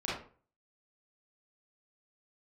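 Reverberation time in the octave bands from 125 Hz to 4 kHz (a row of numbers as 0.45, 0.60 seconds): 0.50, 0.45, 0.45, 0.40, 0.35, 0.30 seconds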